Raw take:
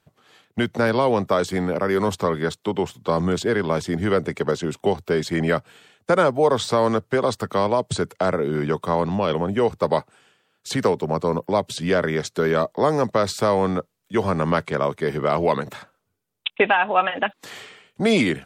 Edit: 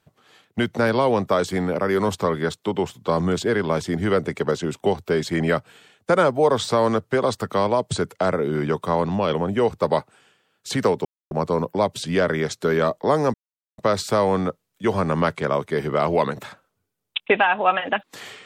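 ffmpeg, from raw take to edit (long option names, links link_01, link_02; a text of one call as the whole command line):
ffmpeg -i in.wav -filter_complex "[0:a]asplit=3[link_01][link_02][link_03];[link_01]atrim=end=11.05,asetpts=PTS-STARTPTS,afade=type=out:start_time=11.046:duration=0.004:curve=hsin,apad=pad_dur=0.26[link_04];[link_02]atrim=start=11.05:end=13.08,asetpts=PTS-STARTPTS,afade=type=in:duration=0.004:curve=hsin,afade=type=out:start_time=2.026:duration=0.004:curve=hsin,apad=pad_dur=0.44[link_05];[link_03]atrim=start=13.08,asetpts=PTS-STARTPTS,afade=type=in:duration=0.004:curve=hsin[link_06];[link_04][link_05][link_06]concat=n=3:v=0:a=1" out.wav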